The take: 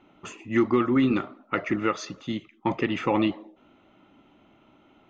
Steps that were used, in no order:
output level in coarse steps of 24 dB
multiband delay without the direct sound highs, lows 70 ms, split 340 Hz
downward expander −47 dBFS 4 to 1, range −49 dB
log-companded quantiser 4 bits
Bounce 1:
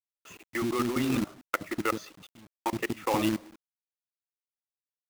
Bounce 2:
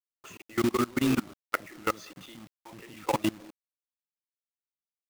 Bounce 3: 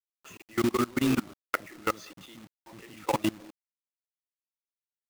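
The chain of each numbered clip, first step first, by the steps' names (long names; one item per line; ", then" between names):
output level in coarse steps, then multiband delay without the direct sound, then downward expander, then log-companded quantiser
multiband delay without the direct sound, then downward expander, then output level in coarse steps, then log-companded quantiser
multiband delay without the direct sound, then output level in coarse steps, then downward expander, then log-companded quantiser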